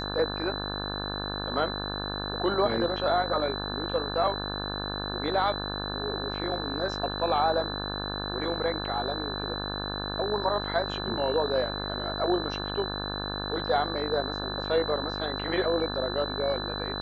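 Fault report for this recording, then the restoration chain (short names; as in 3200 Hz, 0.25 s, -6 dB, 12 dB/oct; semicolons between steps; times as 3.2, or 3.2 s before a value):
buzz 50 Hz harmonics 35 -35 dBFS
tone 4000 Hz -35 dBFS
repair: notch 4000 Hz, Q 30; de-hum 50 Hz, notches 35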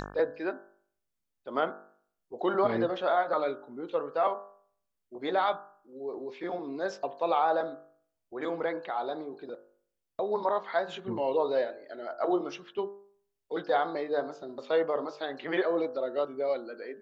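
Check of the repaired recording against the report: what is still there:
none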